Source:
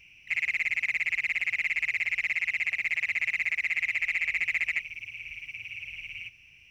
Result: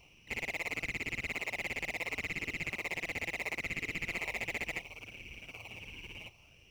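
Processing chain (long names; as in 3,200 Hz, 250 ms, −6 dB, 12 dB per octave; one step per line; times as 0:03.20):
flat-topped bell 2,000 Hz −10.5 dB 1 octave
in parallel at −6.5 dB: sample-and-hold swept by an LFO 26×, swing 60% 0.71 Hz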